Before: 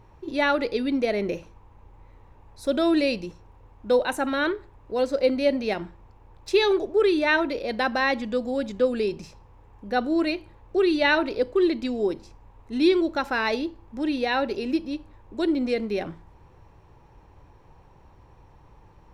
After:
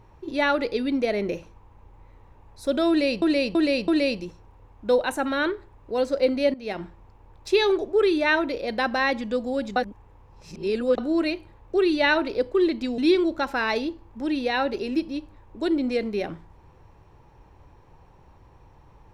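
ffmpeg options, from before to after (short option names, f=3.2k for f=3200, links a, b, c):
-filter_complex "[0:a]asplit=8[a][b][c][d][e][f][g][h];[a]atrim=end=3.222[i];[b]atrim=start=2.888:end=3.222[j];[c]atrim=start=2.888:end=3.222[k];[d]atrim=start=2.888:end=5.55,asetpts=PTS-STARTPTS,afade=t=out:st=2.658:d=0.004:c=hsin:silence=0.11885[l];[e]atrim=start=5.55:end=8.772,asetpts=PTS-STARTPTS,afade=t=in:d=0.29:silence=0.11885[m];[f]atrim=start=8.768:end=9.992,asetpts=PTS-STARTPTS,areverse[n];[g]atrim=start=9.988:end=11.992[o];[h]atrim=start=12.748[p];[i][j]acrossfade=d=0.004:c1=hsin:c2=hsin[q];[q][k]acrossfade=d=0.004:c1=hsin:c2=hsin[r];[l][m]concat=n=2:v=0:a=1[s];[r][s]acrossfade=d=0.004:c1=hsin:c2=hsin[t];[t][n]acrossfade=d=0.004:c1=hsin:c2=hsin[u];[u][o]acrossfade=d=0.004:c1=hsin:c2=hsin[v];[v][p]acrossfade=d=0.004:c1=hsin:c2=hsin"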